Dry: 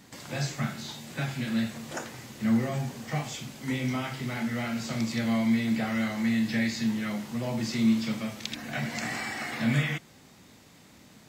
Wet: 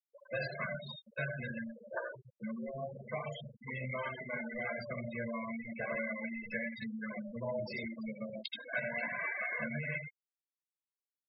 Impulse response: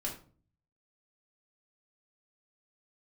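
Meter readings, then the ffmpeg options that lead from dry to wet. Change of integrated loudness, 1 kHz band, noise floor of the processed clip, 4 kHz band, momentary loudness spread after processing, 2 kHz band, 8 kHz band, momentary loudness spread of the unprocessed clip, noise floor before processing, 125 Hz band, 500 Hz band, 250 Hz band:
-9.5 dB, -7.5 dB, under -85 dBFS, -13.0 dB, 8 LU, -3.5 dB, under -30 dB, 11 LU, -55 dBFS, -13.0 dB, -2.0 dB, -15.5 dB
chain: -filter_complex "[0:a]highshelf=f=4.6k:g=-11,aecho=1:1:531|1062|1593|2124:0.075|0.0405|0.0219|0.0118,acrossover=split=450|3000[a][b][c];[b]acompressor=threshold=-29dB:ratio=6[d];[a][d][c]amix=inputs=3:normalize=0,highpass=240,acrusher=bits=3:mode=log:mix=0:aa=0.000001,asplit=2[e][f];[1:a]atrim=start_sample=2205,adelay=75[g];[f][g]afir=irnorm=-1:irlink=0,volume=-7.5dB[h];[e][h]amix=inputs=2:normalize=0,aresample=16000,aresample=44100,flanger=delay=8.5:depth=8.4:regen=14:speed=0.28:shape=sinusoidal,acompressor=threshold=-34dB:ratio=6,aecho=1:1:1.9:0.67,afftfilt=real='re*gte(hypot(re,im),0.0224)':imag='im*gte(hypot(re,im),0.0224)':win_size=1024:overlap=0.75,equalizer=f=350:t=o:w=0.77:g=-8.5,volume=3dB"

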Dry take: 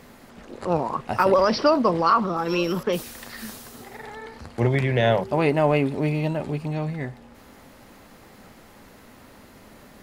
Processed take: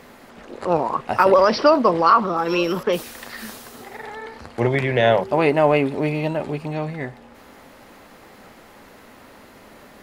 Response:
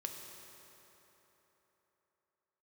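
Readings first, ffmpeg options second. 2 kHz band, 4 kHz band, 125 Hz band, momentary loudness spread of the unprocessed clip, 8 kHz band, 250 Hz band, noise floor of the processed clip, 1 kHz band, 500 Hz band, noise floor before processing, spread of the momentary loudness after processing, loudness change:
+4.5 dB, +2.5 dB, -1.5 dB, 19 LU, n/a, +1.5 dB, -47 dBFS, +4.5 dB, +4.0 dB, -49 dBFS, 20 LU, +3.5 dB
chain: -af "bass=f=250:g=-7,treble=f=4k:g=-4,volume=4.5dB"

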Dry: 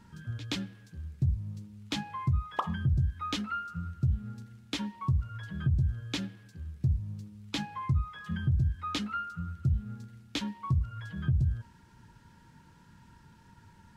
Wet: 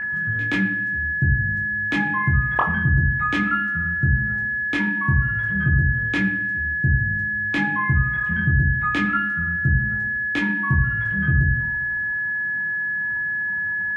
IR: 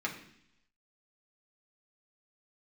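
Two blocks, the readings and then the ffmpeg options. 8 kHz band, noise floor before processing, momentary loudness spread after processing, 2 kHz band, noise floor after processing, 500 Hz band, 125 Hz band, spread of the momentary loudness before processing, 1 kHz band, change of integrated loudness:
n/a, -58 dBFS, 4 LU, +28.5 dB, -25 dBFS, +10.0 dB, +8.0 dB, 14 LU, +10.5 dB, +12.0 dB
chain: -filter_complex "[0:a]aeval=exprs='val(0)+0.02*sin(2*PI*1700*n/s)':c=same,highshelf=f=3k:t=q:w=1.5:g=-10.5,asplit=2[a][b];[1:a]atrim=start_sample=2205,adelay=21[c];[b][c]afir=irnorm=-1:irlink=0,volume=-4dB[d];[a][d]amix=inputs=2:normalize=0,volume=7dB"

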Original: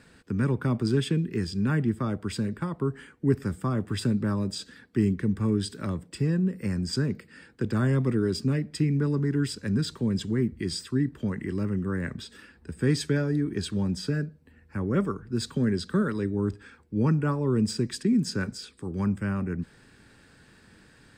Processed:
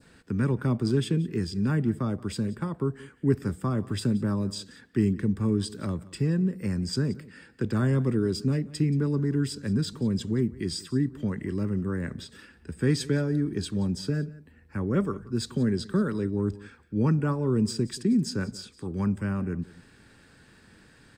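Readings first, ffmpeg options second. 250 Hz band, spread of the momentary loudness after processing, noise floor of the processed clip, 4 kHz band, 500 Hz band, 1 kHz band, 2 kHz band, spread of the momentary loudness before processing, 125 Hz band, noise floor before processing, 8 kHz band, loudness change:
0.0 dB, 8 LU, -56 dBFS, -1.0 dB, 0.0 dB, -1.5 dB, -2.5 dB, 9 LU, 0.0 dB, -57 dBFS, -0.5 dB, 0.0 dB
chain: -af "aecho=1:1:178:0.1,adynamicequalizer=threshold=0.00398:dfrequency=2000:dqfactor=0.83:tfrequency=2000:tqfactor=0.83:attack=5:release=100:ratio=0.375:range=2.5:mode=cutabove:tftype=bell"

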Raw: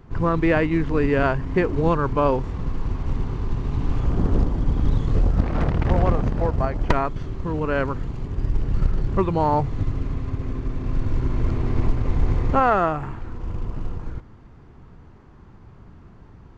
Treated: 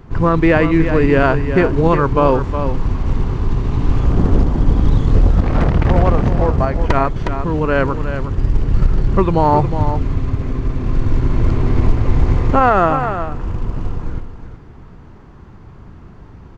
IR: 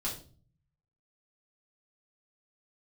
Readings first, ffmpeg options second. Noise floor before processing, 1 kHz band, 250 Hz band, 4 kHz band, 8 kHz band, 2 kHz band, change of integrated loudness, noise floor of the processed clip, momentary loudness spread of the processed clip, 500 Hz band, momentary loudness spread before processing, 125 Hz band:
-47 dBFS, +7.0 dB, +7.0 dB, +7.0 dB, n/a, +7.0 dB, +7.0 dB, -39 dBFS, 9 LU, +7.0 dB, 11 LU, +7.0 dB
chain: -af "aecho=1:1:362:0.335,alimiter=level_in=8dB:limit=-1dB:release=50:level=0:latency=1,volume=-1dB"

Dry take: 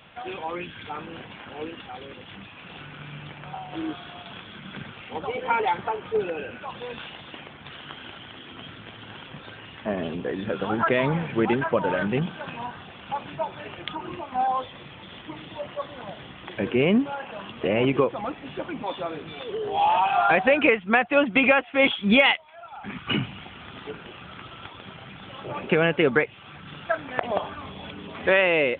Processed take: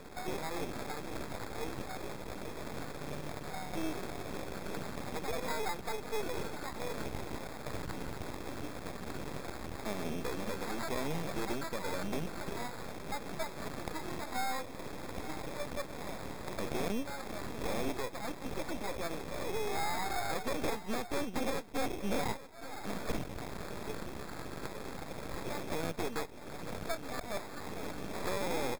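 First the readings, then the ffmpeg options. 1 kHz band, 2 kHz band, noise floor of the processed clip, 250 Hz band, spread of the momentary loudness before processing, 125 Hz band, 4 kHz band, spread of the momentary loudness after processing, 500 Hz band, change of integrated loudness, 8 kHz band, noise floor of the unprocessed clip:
-12.5 dB, -16.0 dB, -45 dBFS, -12.0 dB, 21 LU, -9.5 dB, -12.0 dB, 7 LU, -13.0 dB, -14.5 dB, n/a, -45 dBFS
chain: -filter_complex "[0:a]highpass=120,bass=f=250:g=0,treble=f=4k:g=-12,acrossover=split=710[a][b];[a]alimiter=limit=-24dB:level=0:latency=1:release=422[c];[b]acompressor=threshold=-39dB:ratio=4[d];[c][d]amix=inputs=2:normalize=0,aexciter=amount=3.8:drive=6.4:freq=2.1k,aresample=16000,asoftclip=type=tanh:threshold=-23.5dB,aresample=44100,acrusher=samples=15:mix=1:aa=0.000001,aeval=exprs='max(val(0),0)':c=same,aecho=1:1:871:0.188"

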